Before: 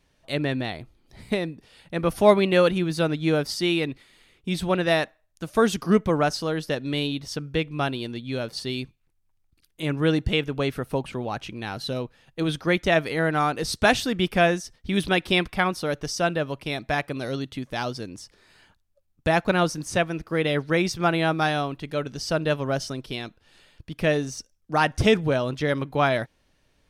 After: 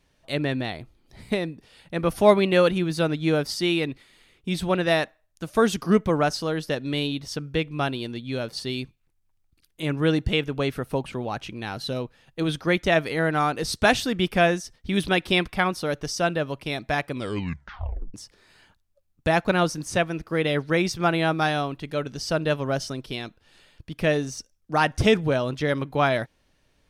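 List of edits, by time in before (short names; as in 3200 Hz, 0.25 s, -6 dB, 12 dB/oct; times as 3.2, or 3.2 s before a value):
17.11 tape stop 1.03 s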